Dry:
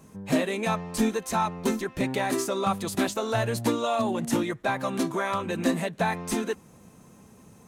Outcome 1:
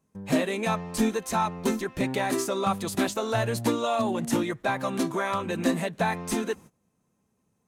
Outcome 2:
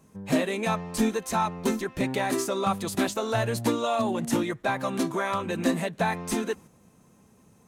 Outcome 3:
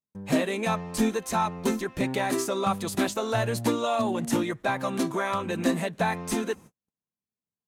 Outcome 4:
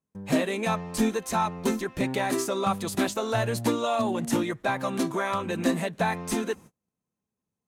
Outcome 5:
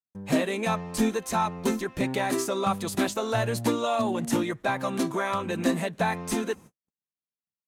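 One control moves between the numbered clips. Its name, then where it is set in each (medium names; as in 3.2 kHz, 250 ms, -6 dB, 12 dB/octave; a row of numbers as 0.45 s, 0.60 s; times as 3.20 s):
gate, range: -21 dB, -6 dB, -47 dB, -35 dB, -59 dB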